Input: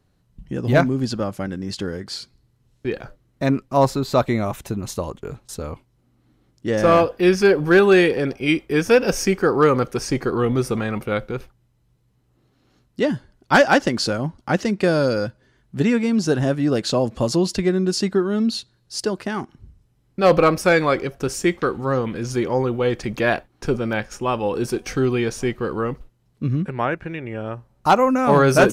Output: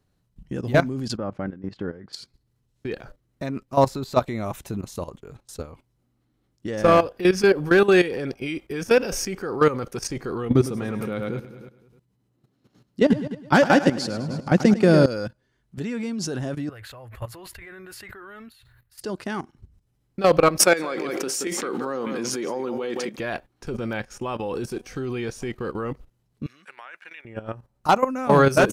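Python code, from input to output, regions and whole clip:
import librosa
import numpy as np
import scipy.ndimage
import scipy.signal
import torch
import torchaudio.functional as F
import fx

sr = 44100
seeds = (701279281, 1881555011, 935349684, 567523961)

y = fx.chain(x, sr, fx.lowpass(hz=1800.0, slope=12),
    fx.peak_eq(hz=63.0, db=-9.5, octaves=0.67), at=(1.17, 2.13))
y = fx.chain(y, sr, fx.highpass(hz=140.0, slope=12),
    fx.low_shelf(hz=330.0, db=11.5),
    fx.echo_feedback(ms=103, feedback_pct=55, wet_db=-9.5), at=(10.49, 15.06))
y = fx.chain(y, sr, fx.curve_eq(hz=(110.0, 170.0, 1000.0, 1900.0, 5700.0, 9200.0, 13000.0), db=(0, -28, -7, 1, -25, -13, 3)),
    fx.sustainer(db_per_s=50.0), at=(16.69, 19.01))
y = fx.chain(y, sr, fx.highpass(hz=210.0, slope=24),
    fx.echo_single(ms=176, db=-13.0),
    fx.pre_swell(db_per_s=30.0), at=(20.59, 23.18))
y = fx.chain(y, sr, fx.highpass(hz=1400.0, slope=12),
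    fx.over_compress(threshold_db=-35.0, ratio=-1.0), at=(26.46, 27.25))
y = fx.high_shelf(y, sr, hz=5000.0, db=3.0)
y = fx.level_steps(y, sr, step_db=14)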